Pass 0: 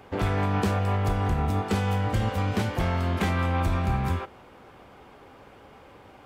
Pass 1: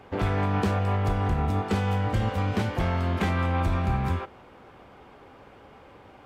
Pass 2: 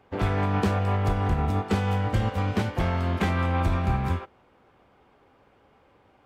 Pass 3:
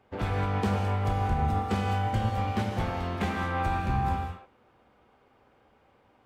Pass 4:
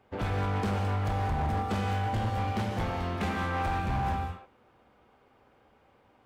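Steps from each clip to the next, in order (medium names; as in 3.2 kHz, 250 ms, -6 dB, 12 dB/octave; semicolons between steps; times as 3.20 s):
treble shelf 6.3 kHz -7.5 dB
upward expansion 1.5:1, over -45 dBFS; trim +2 dB
gated-style reverb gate 230 ms flat, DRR 2 dB; trim -5 dB
hard clipper -25.5 dBFS, distortion -12 dB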